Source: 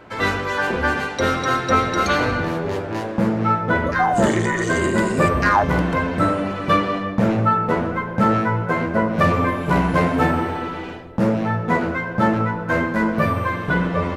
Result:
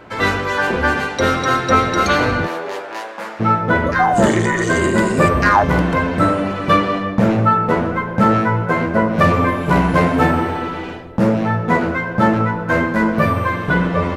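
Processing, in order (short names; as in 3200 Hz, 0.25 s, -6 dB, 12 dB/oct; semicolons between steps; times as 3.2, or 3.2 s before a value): 2.46–3.39 HPF 430 Hz -> 1100 Hz 12 dB/oct; gain +3.5 dB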